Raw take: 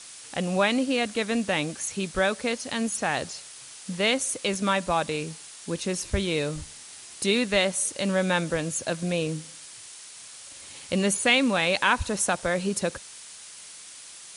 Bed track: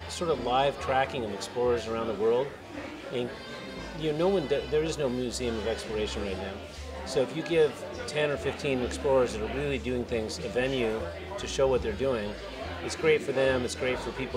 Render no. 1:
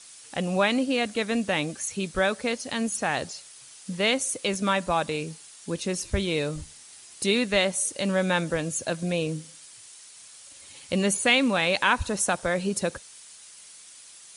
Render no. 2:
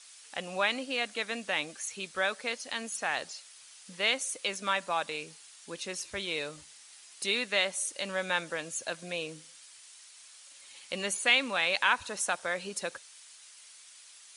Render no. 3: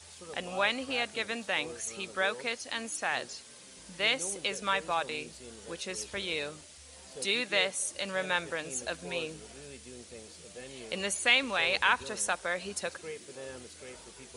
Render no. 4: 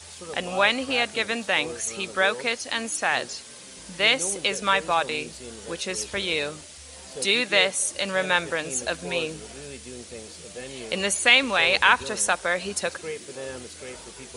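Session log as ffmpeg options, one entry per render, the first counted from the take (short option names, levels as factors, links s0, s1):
-af "afftdn=nr=6:nf=-45"
-af "highpass=f=1400:p=1,highshelf=f=6100:g=-9"
-filter_complex "[1:a]volume=0.119[s0];[0:a][s0]amix=inputs=2:normalize=0"
-af "volume=2.51,alimiter=limit=0.708:level=0:latency=1"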